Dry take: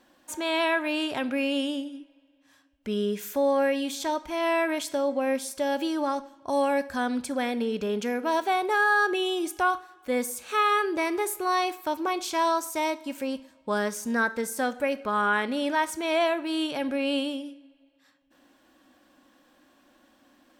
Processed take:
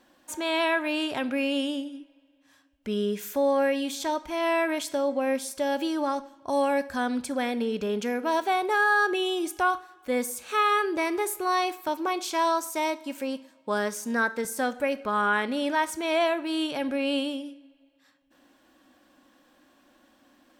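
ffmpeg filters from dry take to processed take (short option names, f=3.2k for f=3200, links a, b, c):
-filter_complex "[0:a]asettb=1/sr,asplit=3[a][b][c];[a]atrim=end=11.884[d];[b]atrim=start=11.88:end=14.45,asetpts=PTS-STARTPTS,afade=t=in:d=0.004:c=qsin,afade=t=out:st=2.566:d=0.004:c=qsin,highpass=180[e];[c]atrim=start=14.446[f];[d][e]acrossfade=d=0.004:c1=hsin:c2=qsin[g];[g][f]acrossfade=d=0.004:c1=qsin:c2=hsin"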